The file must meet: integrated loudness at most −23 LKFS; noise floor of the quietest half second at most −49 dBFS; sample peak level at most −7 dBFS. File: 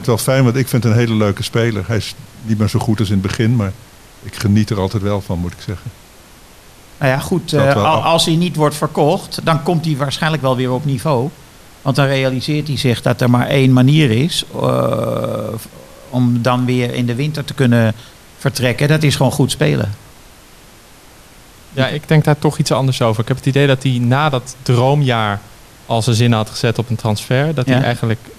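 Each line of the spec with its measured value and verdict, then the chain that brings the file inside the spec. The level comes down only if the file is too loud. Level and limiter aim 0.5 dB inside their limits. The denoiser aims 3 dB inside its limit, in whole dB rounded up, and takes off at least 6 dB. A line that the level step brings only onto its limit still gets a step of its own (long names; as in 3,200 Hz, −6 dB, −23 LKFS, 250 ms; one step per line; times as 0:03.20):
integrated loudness −15.5 LKFS: out of spec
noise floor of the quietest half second −42 dBFS: out of spec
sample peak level −1.5 dBFS: out of spec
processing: level −8 dB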